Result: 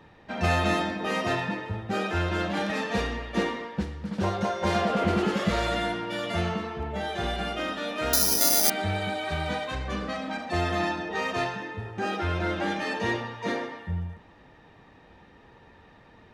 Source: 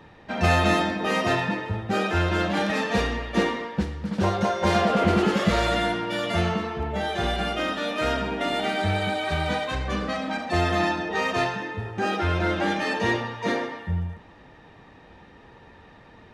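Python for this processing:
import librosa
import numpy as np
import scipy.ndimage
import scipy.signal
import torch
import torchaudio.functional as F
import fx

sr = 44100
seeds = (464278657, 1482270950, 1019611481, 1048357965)

y = fx.resample_bad(x, sr, factor=8, down='filtered', up='zero_stuff', at=(8.13, 8.7))
y = y * librosa.db_to_amplitude(-4.0)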